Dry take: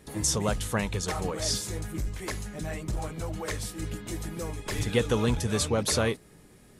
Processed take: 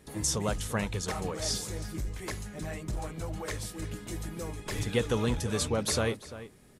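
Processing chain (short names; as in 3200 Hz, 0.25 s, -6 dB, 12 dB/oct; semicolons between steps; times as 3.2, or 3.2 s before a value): outdoor echo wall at 59 m, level -14 dB; gain -3 dB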